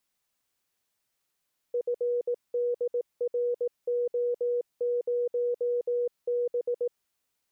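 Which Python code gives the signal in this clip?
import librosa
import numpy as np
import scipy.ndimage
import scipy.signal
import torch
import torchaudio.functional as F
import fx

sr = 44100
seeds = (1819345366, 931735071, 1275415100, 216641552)

y = fx.morse(sr, text='FDRO0B', wpm=18, hz=484.0, level_db=-24.5)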